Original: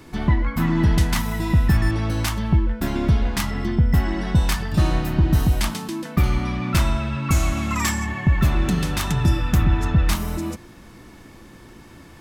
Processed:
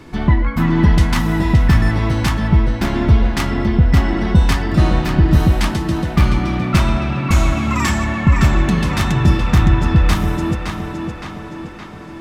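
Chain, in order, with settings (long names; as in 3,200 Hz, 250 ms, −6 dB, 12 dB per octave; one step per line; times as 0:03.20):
high-shelf EQ 7,300 Hz −11.5 dB
on a send: tape delay 566 ms, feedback 64%, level −4 dB, low-pass 5,800 Hz
on the sum: level +5 dB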